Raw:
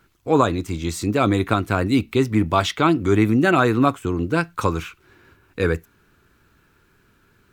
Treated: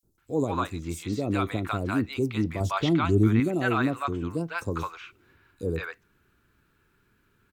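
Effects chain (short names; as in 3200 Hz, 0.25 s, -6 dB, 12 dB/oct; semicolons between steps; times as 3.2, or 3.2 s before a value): 2.57–3.37 low shelf 200 Hz +9.5 dB; three bands offset in time highs, lows, mids 30/180 ms, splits 680/5600 Hz; gain -7.5 dB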